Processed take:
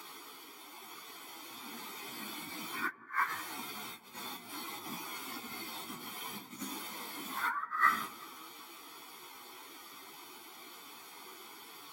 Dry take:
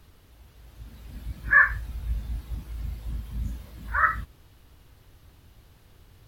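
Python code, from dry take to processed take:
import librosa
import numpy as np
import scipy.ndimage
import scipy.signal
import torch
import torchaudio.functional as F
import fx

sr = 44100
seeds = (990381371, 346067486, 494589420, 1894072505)

p1 = fx.over_compress(x, sr, threshold_db=-32.0, ratio=-0.5)
p2 = scipy.signal.sosfilt(scipy.signal.butter(4, 340.0, 'highpass', fs=sr, output='sos'), p1)
p3 = p2 + 0.8 * np.pad(p2, (int(0.9 * sr / 1000.0), 0))[:len(p2)]
p4 = p3 + fx.echo_wet_lowpass(p3, sr, ms=98, feedback_pct=57, hz=1000.0, wet_db=-15.5, dry=0)
p5 = fx.stretch_vocoder_free(p4, sr, factor=1.9)
y = p5 * 10.0 ** (8.5 / 20.0)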